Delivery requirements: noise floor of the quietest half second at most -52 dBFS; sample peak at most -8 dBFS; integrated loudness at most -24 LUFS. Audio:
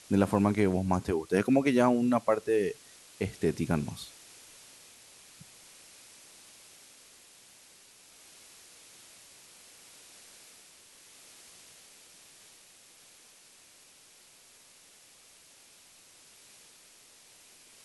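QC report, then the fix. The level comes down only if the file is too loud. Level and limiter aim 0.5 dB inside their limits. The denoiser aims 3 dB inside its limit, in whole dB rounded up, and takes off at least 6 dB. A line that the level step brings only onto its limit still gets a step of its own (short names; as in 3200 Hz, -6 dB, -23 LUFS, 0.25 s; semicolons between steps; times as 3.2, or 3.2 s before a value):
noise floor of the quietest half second -58 dBFS: OK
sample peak -10.0 dBFS: OK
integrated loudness -28.0 LUFS: OK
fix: none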